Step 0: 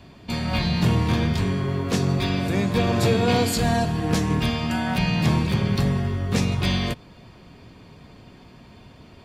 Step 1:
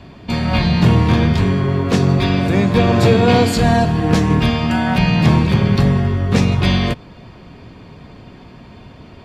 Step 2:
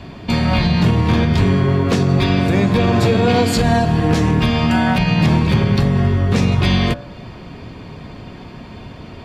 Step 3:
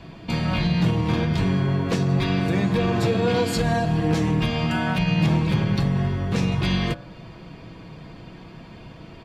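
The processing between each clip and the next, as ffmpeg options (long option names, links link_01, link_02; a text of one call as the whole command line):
ffmpeg -i in.wav -af "lowpass=frequency=3400:poles=1,volume=8dB" out.wav
ffmpeg -i in.wav -filter_complex "[0:a]bandreject=frequency=64.08:width_type=h:width=4,bandreject=frequency=128.16:width_type=h:width=4,bandreject=frequency=192.24:width_type=h:width=4,bandreject=frequency=256.32:width_type=h:width=4,bandreject=frequency=320.4:width_type=h:width=4,bandreject=frequency=384.48:width_type=h:width=4,bandreject=frequency=448.56:width_type=h:width=4,bandreject=frequency=512.64:width_type=h:width=4,bandreject=frequency=576.72:width_type=h:width=4,bandreject=frequency=640.8:width_type=h:width=4,bandreject=frequency=704.88:width_type=h:width=4,bandreject=frequency=768.96:width_type=h:width=4,bandreject=frequency=833.04:width_type=h:width=4,bandreject=frequency=897.12:width_type=h:width=4,bandreject=frequency=961.2:width_type=h:width=4,bandreject=frequency=1025.28:width_type=h:width=4,bandreject=frequency=1089.36:width_type=h:width=4,bandreject=frequency=1153.44:width_type=h:width=4,bandreject=frequency=1217.52:width_type=h:width=4,bandreject=frequency=1281.6:width_type=h:width=4,bandreject=frequency=1345.68:width_type=h:width=4,bandreject=frequency=1409.76:width_type=h:width=4,bandreject=frequency=1473.84:width_type=h:width=4,bandreject=frequency=1537.92:width_type=h:width=4,bandreject=frequency=1602:width_type=h:width=4,bandreject=frequency=1666.08:width_type=h:width=4,bandreject=frequency=1730.16:width_type=h:width=4,bandreject=frequency=1794.24:width_type=h:width=4,asplit=2[link_01][link_02];[link_02]acompressor=threshold=-24dB:ratio=6,volume=-2dB[link_03];[link_01][link_03]amix=inputs=2:normalize=0,alimiter=limit=-5.5dB:level=0:latency=1:release=125" out.wav
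ffmpeg -i in.wav -af "aecho=1:1:6.1:0.43,volume=-7.5dB" out.wav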